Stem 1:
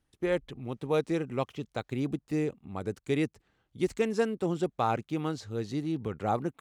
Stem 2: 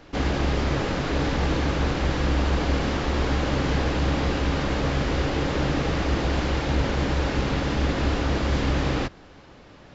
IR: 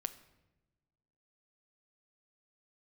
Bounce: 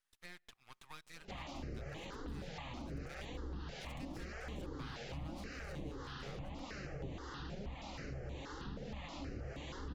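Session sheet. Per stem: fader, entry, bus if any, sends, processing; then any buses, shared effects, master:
-1.0 dB, 0.00 s, send -18.5 dB, high-pass 1.1 kHz 24 dB/octave; compression 2:1, threshold -43 dBFS, peak gain reduction 8 dB; half-wave rectifier
-2.0 dB, 1.15 s, no send, flange 0.91 Hz, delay 3.8 ms, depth 4.9 ms, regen +43%; harmonic tremolo 1.7 Hz, depth 70%, crossover 710 Hz; stepped phaser 6.3 Hz 290–5100 Hz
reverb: on, pre-delay 7 ms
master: compression 2:1, threshold -50 dBFS, peak gain reduction 12 dB

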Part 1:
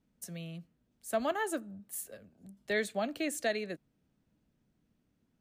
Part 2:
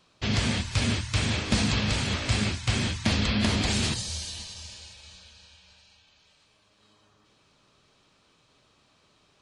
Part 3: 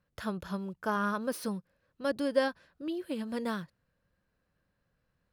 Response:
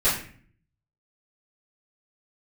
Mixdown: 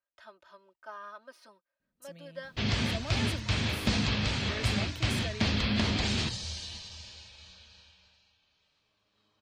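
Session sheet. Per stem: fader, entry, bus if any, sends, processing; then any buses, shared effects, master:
-10.0 dB, 1.80 s, no send, decay stretcher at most 46 dB/s
7.79 s -2.5 dB -> 8.38 s -10 dB, 2.35 s, no send, Chebyshev low-pass 4.7 kHz, order 2
-14.0 dB, 0.00 s, no send, three-band isolator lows -22 dB, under 480 Hz, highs -18 dB, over 6.5 kHz; comb 3.2 ms, depth 92%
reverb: none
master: none

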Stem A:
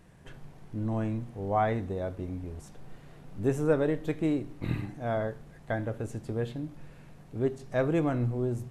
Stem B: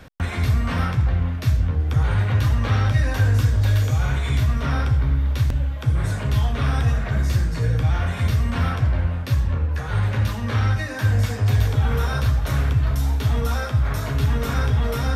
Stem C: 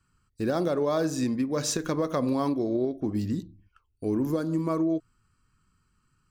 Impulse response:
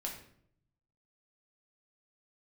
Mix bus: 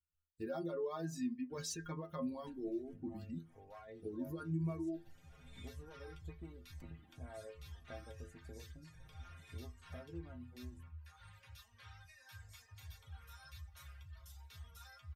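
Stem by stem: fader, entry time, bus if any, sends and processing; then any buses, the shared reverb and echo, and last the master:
-1.5 dB, 2.20 s, bus A, no send, one-sided clip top -25 dBFS; compression 8:1, threshold -39 dBFS, peak gain reduction 16.5 dB
-13.0 dB, 1.30 s, no bus, no send, amplifier tone stack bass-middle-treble 10-0-10; auto duck -18 dB, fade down 1.95 s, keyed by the third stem
-1.0 dB, 0.00 s, bus A, send -16.5 dB, expander on every frequency bin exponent 1.5
bus A: 0.0 dB, peak limiter -26.5 dBFS, peak gain reduction 7 dB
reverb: on, RT60 0.65 s, pre-delay 6 ms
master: reverb removal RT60 0.94 s; inharmonic resonator 80 Hz, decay 0.29 s, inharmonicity 0.008

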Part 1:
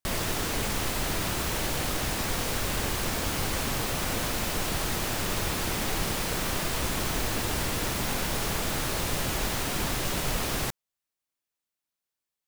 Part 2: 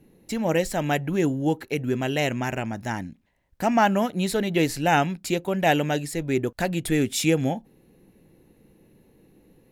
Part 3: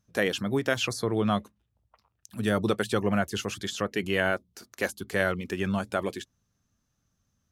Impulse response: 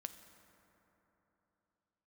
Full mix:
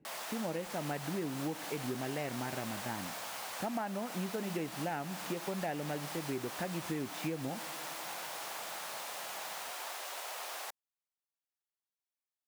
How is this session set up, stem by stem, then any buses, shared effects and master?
-4.0 dB, 0.00 s, no send, ladder high-pass 570 Hz, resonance 35%
-11.0 dB, 0.00 s, send -6.5 dB, low-pass 2.1 kHz
mute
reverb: on, RT60 3.5 s, pre-delay 5 ms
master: high-pass 110 Hz; compression 10:1, threshold -33 dBFS, peak gain reduction 11 dB

